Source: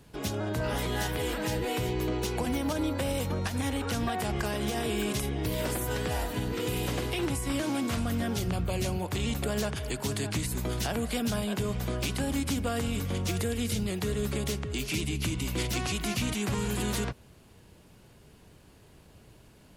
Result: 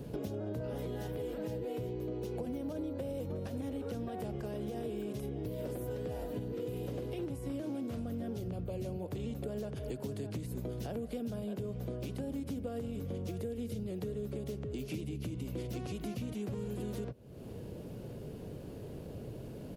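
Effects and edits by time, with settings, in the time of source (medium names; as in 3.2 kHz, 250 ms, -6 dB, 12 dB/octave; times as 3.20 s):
2.84–3.41 s: echo throw 360 ms, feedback 65%, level -12.5 dB
whole clip: graphic EQ 125/250/500/1000/2000/4000/8000 Hz +7/+5/+11/-5/-5/-3/-7 dB; compression, threshold -43 dBFS; trim +5 dB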